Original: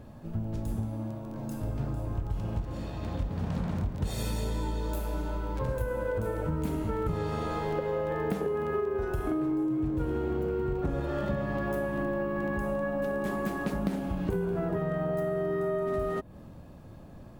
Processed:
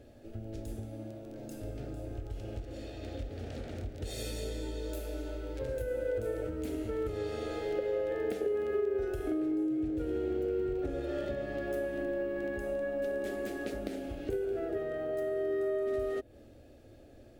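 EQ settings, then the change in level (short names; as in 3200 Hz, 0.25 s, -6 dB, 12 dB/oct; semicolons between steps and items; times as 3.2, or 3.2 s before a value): low shelf 110 Hz -8 dB; high shelf 12000 Hz -8.5 dB; fixed phaser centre 420 Hz, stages 4; 0.0 dB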